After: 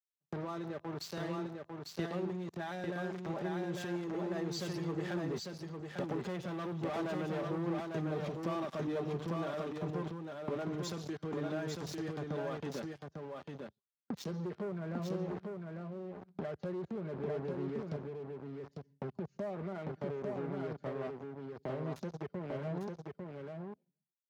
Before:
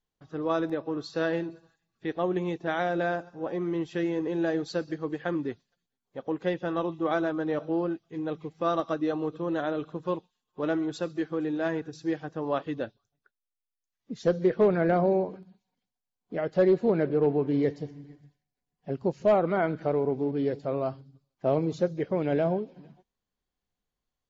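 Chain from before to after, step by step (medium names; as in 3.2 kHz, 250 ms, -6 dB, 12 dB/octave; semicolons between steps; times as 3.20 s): Doppler pass-by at 6.92 s, 10 m/s, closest 11 m; tone controls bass +5 dB, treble +13 dB; comb 5 ms, depth 56%; gate with hold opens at -51 dBFS; waveshaping leveller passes 5; peak limiter -38 dBFS, peak gain reduction 24.5 dB; high-pass 70 Hz 24 dB/octave; compression 5:1, threshold -56 dBFS, peak gain reduction 16 dB; treble shelf 3.7 kHz -10 dB; delay 849 ms -3 dB; three bands expanded up and down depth 40%; trim +18 dB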